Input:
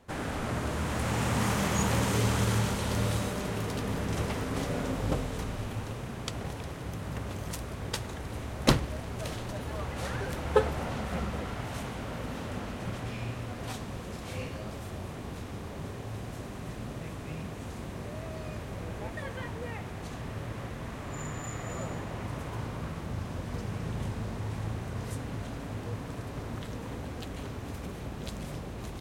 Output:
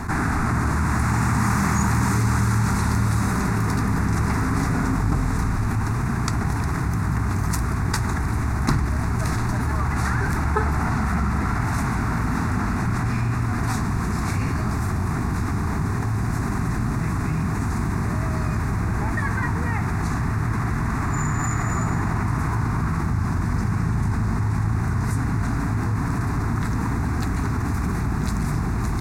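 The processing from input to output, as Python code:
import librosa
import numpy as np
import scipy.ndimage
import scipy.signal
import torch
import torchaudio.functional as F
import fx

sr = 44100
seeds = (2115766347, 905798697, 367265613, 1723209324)

y = fx.high_shelf(x, sr, hz=9100.0, db=-9.0)
y = fx.fixed_phaser(y, sr, hz=1300.0, stages=4)
y = fx.env_flatten(y, sr, amount_pct=70)
y = F.gain(torch.from_numpy(y), 3.0).numpy()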